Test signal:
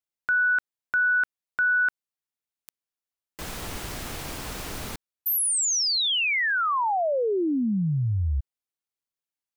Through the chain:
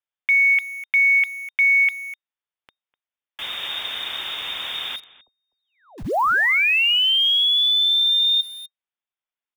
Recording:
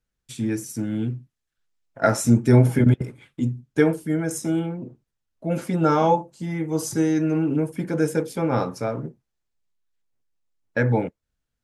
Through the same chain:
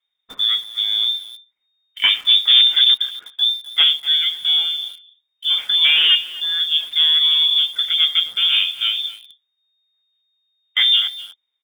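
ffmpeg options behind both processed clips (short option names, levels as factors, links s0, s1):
-filter_complex "[0:a]aeval=exprs='0.668*(cos(1*acos(clip(val(0)/0.668,-1,1)))-cos(1*PI/2))+0.00841*(cos(2*acos(clip(val(0)/0.668,-1,1)))-cos(2*PI/2))+0.0841*(cos(3*acos(clip(val(0)/0.668,-1,1)))-cos(3*PI/2))+0.168*(cos(5*acos(clip(val(0)/0.668,-1,1)))-cos(5*PI/2))':c=same,lowpass=f=3100:t=q:w=0.5098,lowpass=f=3100:t=q:w=0.6013,lowpass=f=3100:t=q:w=0.9,lowpass=f=3100:t=q:w=2.563,afreqshift=-3700,asplit=2[s0][s1];[s1]adelay=250.7,volume=0.158,highshelf=f=4000:g=-5.64[s2];[s0][s2]amix=inputs=2:normalize=0,asplit=2[s3][s4];[s4]acrusher=bits=5:mix=0:aa=0.000001,volume=0.501[s5];[s3][s5]amix=inputs=2:normalize=0,volume=0.75"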